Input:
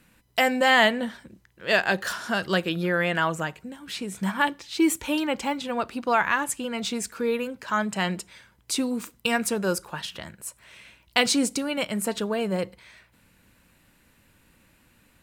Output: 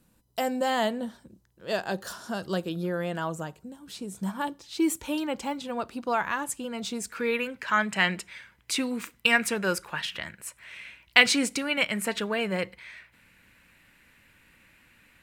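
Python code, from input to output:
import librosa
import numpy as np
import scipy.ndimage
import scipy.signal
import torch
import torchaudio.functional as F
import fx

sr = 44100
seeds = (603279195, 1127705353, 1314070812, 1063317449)

y = fx.peak_eq(x, sr, hz=2100.0, db=fx.steps((0.0, -12.5), (4.63, -4.5), (7.11, 11.0)), octaves=1.3)
y = y * 10.0 ** (-3.5 / 20.0)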